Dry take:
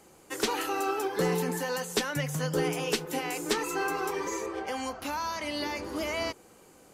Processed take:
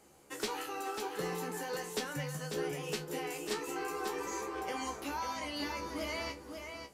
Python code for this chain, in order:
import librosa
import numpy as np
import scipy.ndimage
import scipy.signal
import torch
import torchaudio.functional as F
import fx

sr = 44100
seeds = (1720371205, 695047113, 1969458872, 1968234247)

y = fx.comb_fb(x, sr, f0_hz=70.0, decay_s=0.18, harmonics='all', damping=0.0, mix_pct=90)
y = fx.rider(y, sr, range_db=4, speed_s=0.5)
y = y + 10.0 ** (-6.5 / 20.0) * np.pad(y, (int(544 * sr / 1000.0), 0))[:len(y)]
y = F.gain(torch.from_numpy(y), -2.5).numpy()